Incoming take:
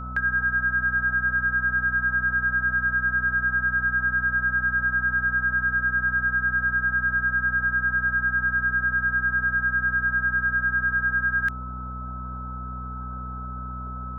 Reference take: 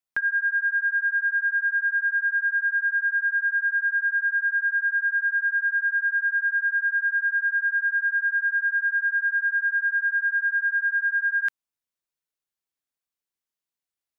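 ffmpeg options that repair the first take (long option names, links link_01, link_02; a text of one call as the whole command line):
ffmpeg -i in.wav -af "bandreject=frequency=62.1:width_type=h:width=4,bandreject=frequency=124.2:width_type=h:width=4,bandreject=frequency=186.3:width_type=h:width=4,bandreject=frequency=248.4:width_type=h:width=4,bandreject=frequency=1300:width=30,afwtdn=0.01" out.wav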